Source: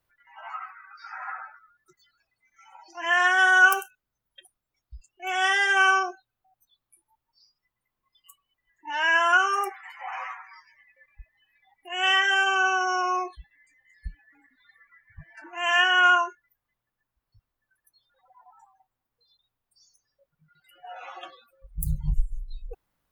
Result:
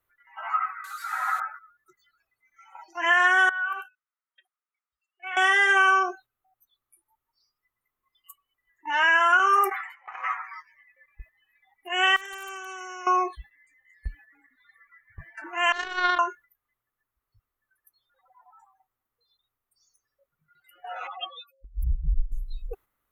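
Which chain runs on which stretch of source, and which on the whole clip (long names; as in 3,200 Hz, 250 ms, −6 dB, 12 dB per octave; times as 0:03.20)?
0:00.84–0:01.40: spike at every zero crossing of −35 dBFS + low-pass filter 7,500 Hz
0:03.49–0:05.37: high-pass filter 1,200 Hz + downward compressor 5 to 1, threshold −30 dBFS + high-frequency loss of the air 410 metres
0:09.39–0:10.24: noise gate −33 dBFS, range −19 dB + level that may fall only so fast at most 91 dB per second
0:12.16–0:13.07: gain into a clipping stage and back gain 14 dB + output level in coarse steps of 20 dB + every bin compressed towards the loudest bin 2 to 1
0:15.72–0:16.19: high-frequency loss of the air 480 metres + power curve on the samples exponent 3
0:21.07–0:22.32: expanding power law on the bin magnitudes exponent 3.5 + high shelf with overshoot 2,000 Hz +10 dB, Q 3
whole clip: noise gate −50 dBFS, range −7 dB; thirty-one-band graphic EQ 160 Hz −9 dB, 400 Hz +5 dB, 1,250 Hz +9 dB, 2,000 Hz +5 dB, 5,000 Hz −8 dB, 12,500 Hz +11 dB; downward compressor 3 to 1, threshold −21 dBFS; level +3 dB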